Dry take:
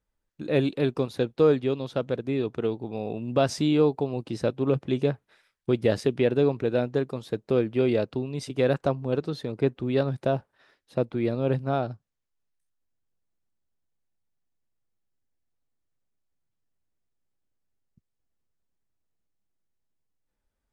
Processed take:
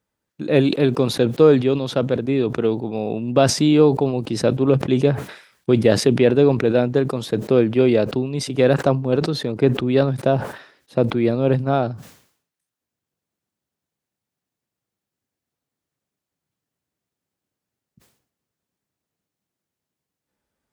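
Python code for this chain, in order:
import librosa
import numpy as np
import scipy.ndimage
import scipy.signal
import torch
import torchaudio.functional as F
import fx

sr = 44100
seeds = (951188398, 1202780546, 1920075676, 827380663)

y = scipy.signal.sosfilt(scipy.signal.butter(2, 130.0, 'highpass', fs=sr, output='sos'), x)
y = fx.low_shelf(y, sr, hz=190.0, db=4.0)
y = fx.sustainer(y, sr, db_per_s=99.0)
y = y * 10.0 ** (6.5 / 20.0)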